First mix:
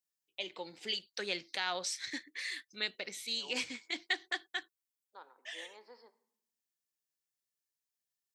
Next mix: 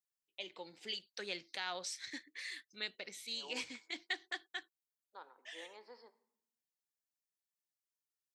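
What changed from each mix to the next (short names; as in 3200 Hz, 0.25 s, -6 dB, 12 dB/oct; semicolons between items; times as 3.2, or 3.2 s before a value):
first voice -5.5 dB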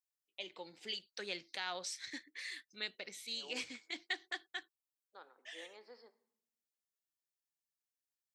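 second voice: add bell 950 Hz -9 dB 0.31 oct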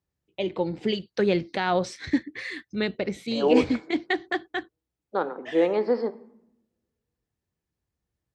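second voice +10.5 dB; master: remove differentiator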